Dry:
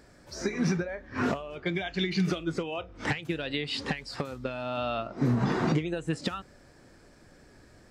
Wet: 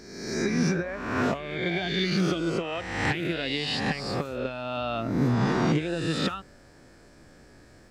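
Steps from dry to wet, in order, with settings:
peak hold with a rise ahead of every peak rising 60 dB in 1.07 s

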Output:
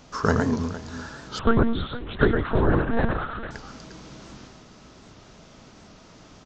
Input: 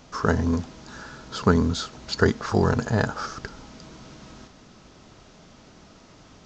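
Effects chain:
multi-tap delay 113/459 ms −4.5/−15.5 dB
0:01.39–0:03.51: one-pitch LPC vocoder at 8 kHz 230 Hz
wow of a warped record 78 rpm, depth 100 cents

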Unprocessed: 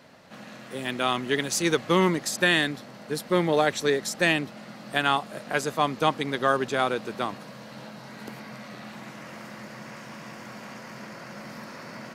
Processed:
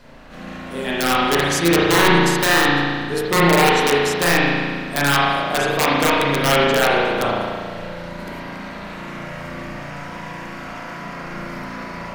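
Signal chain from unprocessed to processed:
wrap-around overflow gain 14 dB
background noise brown −53 dBFS
spring reverb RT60 1.8 s, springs 35 ms, chirp 55 ms, DRR −7 dB
level +2.5 dB

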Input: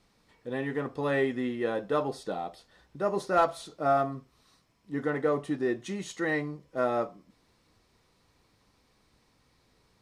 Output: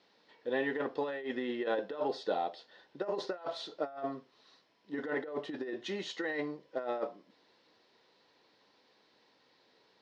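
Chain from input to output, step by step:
compressor whose output falls as the input rises −31 dBFS, ratio −0.5
loudspeaker in its box 410–4,600 Hz, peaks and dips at 720 Hz −3 dB, 1,200 Hz −9 dB, 2,300 Hz −6 dB
level +1.5 dB

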